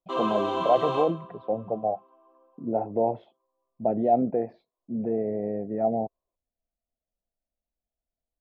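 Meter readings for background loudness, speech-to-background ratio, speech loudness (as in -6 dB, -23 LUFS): -29.0 LUFS, 1.0 dB, -28.0 LUFS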